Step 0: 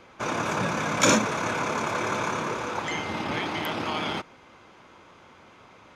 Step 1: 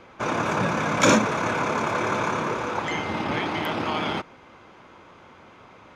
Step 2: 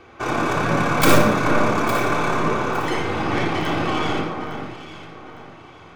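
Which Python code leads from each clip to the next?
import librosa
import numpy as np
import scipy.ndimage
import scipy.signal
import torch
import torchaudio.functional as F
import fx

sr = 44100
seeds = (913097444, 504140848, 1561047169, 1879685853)

y1 = fx.high_shelf(x, sr, hz=3800.0, db=-7.5)
y1 = y1 * 10.0 ** (3.5 / 20.0)
y2 = fx.tracing_dist(y1, sr, depth_ms=0.3)
y2 = fx.echo_alternate(y2, sr, ms=429, hz=1900.0, feedback_pct=53, wet_db=-7)
y2 = fx.room_shoebox(y2, sr, seeds[0], volume_m3=3700.0, walls='furnished', distance_m=3.5)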